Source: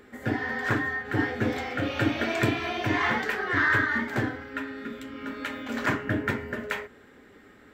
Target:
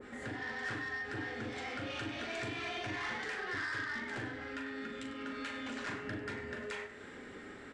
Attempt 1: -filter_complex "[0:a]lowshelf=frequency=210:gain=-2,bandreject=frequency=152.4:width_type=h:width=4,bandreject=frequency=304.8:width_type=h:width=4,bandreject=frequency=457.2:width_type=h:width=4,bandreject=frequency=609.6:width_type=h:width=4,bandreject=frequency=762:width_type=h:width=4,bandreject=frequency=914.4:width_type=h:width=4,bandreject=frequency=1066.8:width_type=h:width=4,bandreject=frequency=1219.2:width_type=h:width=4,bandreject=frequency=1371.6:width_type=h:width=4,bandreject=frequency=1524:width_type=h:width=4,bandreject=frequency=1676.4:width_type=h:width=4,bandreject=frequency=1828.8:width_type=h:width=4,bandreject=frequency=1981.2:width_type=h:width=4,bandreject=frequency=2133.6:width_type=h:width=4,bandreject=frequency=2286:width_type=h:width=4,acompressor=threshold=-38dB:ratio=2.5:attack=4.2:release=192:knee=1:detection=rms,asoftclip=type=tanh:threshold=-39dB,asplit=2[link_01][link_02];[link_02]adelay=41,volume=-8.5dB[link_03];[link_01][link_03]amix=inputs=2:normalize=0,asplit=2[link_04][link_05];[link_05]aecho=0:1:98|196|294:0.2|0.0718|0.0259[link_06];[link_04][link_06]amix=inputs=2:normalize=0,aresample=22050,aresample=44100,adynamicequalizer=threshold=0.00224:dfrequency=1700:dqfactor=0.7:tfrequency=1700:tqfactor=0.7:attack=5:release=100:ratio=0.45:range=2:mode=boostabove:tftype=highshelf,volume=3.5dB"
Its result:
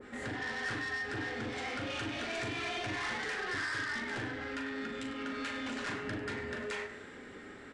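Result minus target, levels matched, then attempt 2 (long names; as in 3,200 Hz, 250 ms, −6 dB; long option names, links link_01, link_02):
downward compressor: peak gain reduction −5 dB
-filter_complex "[0:a]lowshelf=frequency=210:gain=-2,bandreject=frequency=152.4:width_type=h:width=4,bandreject=frequency=304.8:width_type=h:width=4,bandreject=frequency=457.2:width_type=h:width=4,bandreject=frequency=609.6:width_type=h:width=4,bandreject=frequency=762:width_type=h:width=4,bandreject=frequency=914.4:width_type=h:width=4,bandreject=frequency=1066.8:width_type=h:width=4,bandreject=frequency=1219.2:width_type=h:width=4,bandreject=frequency=1371.6:width_type=h:width=4,bandreject=frequency=1524:width_type=h:width=4,bandreject=frequency=1676.4:width_type=h:width=4,bandreject=frequency=1828.8:width_type=h:width=4,bandreject=frequency=1981.2:width_type=h:width=4,bandreject=frequency=2133.6:width_type=h:width=4,bandreject=frequency=2286:width_type=h:width=4,acompressor=threshold=-46dB:ratio=2.5:attack=4.2:release=192:knee=1:detection=rms,asoftclip=type=tanh:threshold=-39dB,asplit=2[link_01][link_02];[link_02]adelay=41,volume=-8.5dB[link_03];[link_01][link_03]amix=inputs=2:normalize=0,asplit=2[link_04][link_05];[link_05]aecho=0:1:98|196|294:0.2|0.0718|0.0259[link_06];[link_04][link_06]amix=inputs=2:normalize=0,aresample=22050,aresample=44100,adynamicequalizer=threshold=0.00224:dfrequency=1700:dqfactor=0.7:tfrequency=1700:tqfactor=0.7:attack=5:release=100:ratio=0.45:range=2:mode=boostabove:tftype=highshelf,volume=3.5dB"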